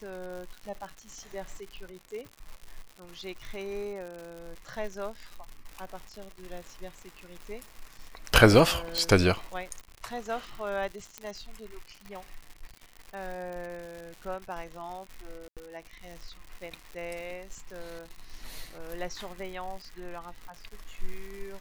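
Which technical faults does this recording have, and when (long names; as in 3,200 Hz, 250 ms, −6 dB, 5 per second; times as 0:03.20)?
surface crackle 140 per second −37 dBFS
0:08.98: click
0:11.18: click −20 dBFS
0:15.48–0:15.57: drop-out 87 ms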